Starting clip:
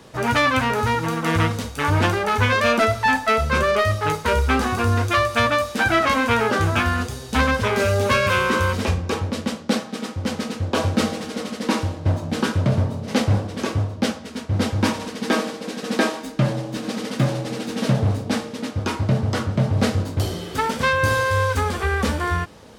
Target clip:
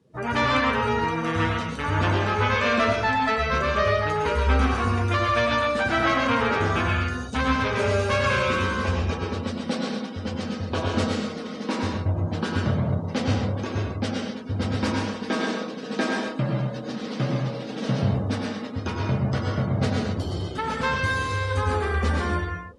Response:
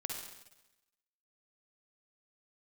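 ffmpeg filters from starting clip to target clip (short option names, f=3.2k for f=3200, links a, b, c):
-filter_complex "[1:a]atrim=start_sample=2205,atrim=end_sample=6174,asetrate=22491,aresample=44100[a];[0:a][a]afir=irnorm=-1:irlink=0,afftdn=nr=20:nf=-35,volume=-7.5dB"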